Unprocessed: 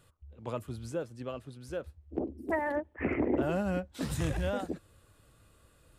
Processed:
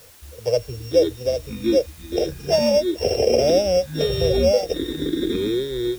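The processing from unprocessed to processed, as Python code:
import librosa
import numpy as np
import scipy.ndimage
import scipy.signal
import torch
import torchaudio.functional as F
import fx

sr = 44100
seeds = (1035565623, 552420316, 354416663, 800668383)

y = np.r_[np.sort(x[:len(x) // 16 * 16].reshape(-1, 16), axis=1).ravel(), x[len(x) // 16 * 16:]]
y = fx.spec_gate(y, sr, threshold_db=-30, keep='strong')
y = fx.curve_eq(y, sr, hz=(120.0, 300.0, 470.0, 730.0, 1100.0, 3100.0, 5400.0, 7800.0), db=(0, -18, 14, 4, -17, -9, 8, -10))
y = fx.dmg_noise_colour(y, sr, seeds[0], colour='white', level_db=-58.0)
y = fx.echo_pitch(y, sr, ms=228, semitones=-7, count=3, db_per_echo=-6.0)
y = F.gain(torch.from_numpy(y), 9.0).numpy()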